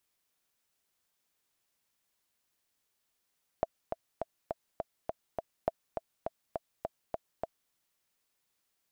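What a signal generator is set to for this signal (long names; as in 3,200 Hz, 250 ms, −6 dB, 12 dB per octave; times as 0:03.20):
click track 205 BPM, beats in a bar 7, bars 2, 659 Hz, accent 6 dB −14.5 dBFS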